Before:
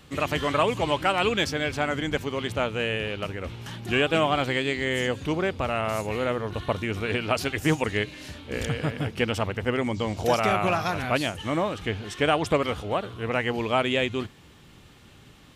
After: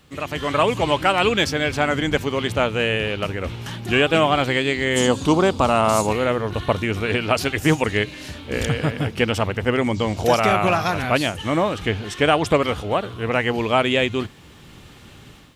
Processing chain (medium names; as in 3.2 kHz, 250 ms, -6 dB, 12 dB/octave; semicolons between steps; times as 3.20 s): 4.96–6.13 s: graphic EQ 250/1000/2000/4000/8000 Hz +6/+9/-8/+6/+10 dB; level rider gain up to 10 dB; word length cut 12-bit, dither triangular; trim -2.5 dB